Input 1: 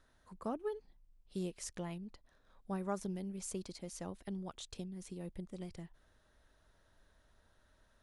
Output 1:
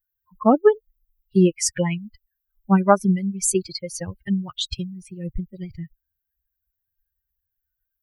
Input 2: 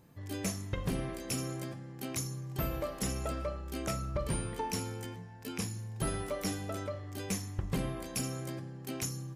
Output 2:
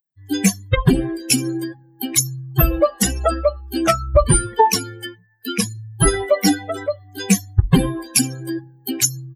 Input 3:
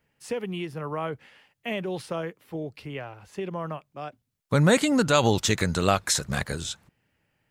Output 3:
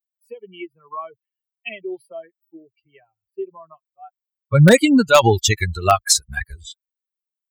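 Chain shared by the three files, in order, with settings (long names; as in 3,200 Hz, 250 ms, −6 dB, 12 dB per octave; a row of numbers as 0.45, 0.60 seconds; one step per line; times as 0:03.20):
spectral dynamics exaggerated over time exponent 3
in parallel at −10.5 dB: wrap-around overflow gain 14 dB
on the sum: normalise the peak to −1.5 dBFS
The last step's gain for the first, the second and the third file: +25.0, +23.5, +10.0 decibels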